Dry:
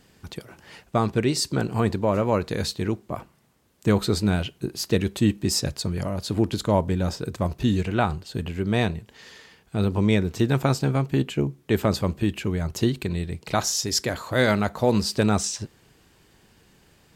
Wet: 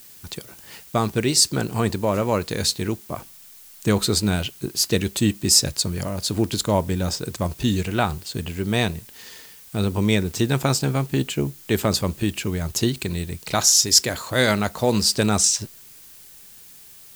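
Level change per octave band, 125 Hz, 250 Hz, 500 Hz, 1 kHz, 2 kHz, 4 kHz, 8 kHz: 0.0, +0.5, +0.5, +1.0, +2.5, +8.0, +10.5 dB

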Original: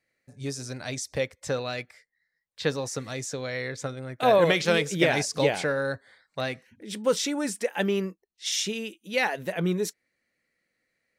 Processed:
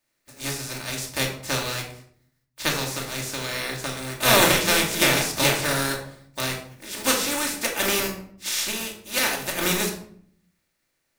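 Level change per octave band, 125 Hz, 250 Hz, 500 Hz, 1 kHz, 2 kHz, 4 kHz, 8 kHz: +1.5, +0.5, -2.5, +3.5, +5.5, +8.0, +9.5 dB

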